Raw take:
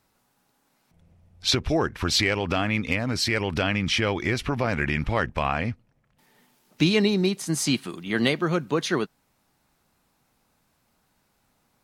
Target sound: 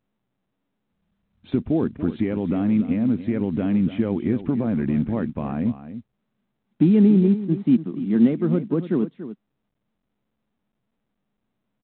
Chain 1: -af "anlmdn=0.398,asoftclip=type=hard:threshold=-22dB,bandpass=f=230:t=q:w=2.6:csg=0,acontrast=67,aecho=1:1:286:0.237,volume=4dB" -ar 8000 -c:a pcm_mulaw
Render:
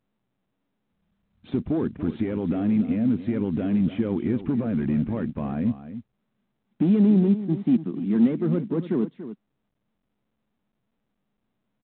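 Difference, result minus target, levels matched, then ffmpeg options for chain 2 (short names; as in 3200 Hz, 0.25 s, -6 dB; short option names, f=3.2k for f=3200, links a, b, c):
hard clip: distortion +16 dB
-af "anlmdn=0.398,asoftclip=type=hard:threshold=-13.5dB,bandpass=f=230:t=q:w=2.6:csg=0,acontrast=67,aecho=1:1:286:0.237,volume=4dB" -ar 8000 -c:a pcm_mulaw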